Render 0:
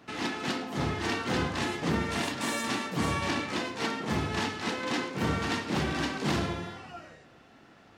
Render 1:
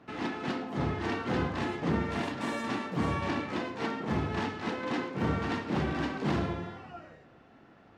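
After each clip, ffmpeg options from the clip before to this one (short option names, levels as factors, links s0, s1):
-af "lowpass=f=1500:p=1"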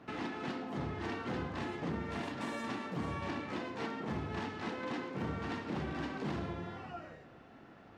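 -af "acompressor=threshold=0.01:ratio=2.5,volume=1.12"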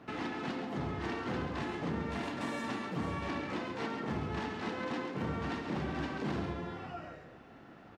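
-af "aecho=1:1:137:0.376,volume=1.19"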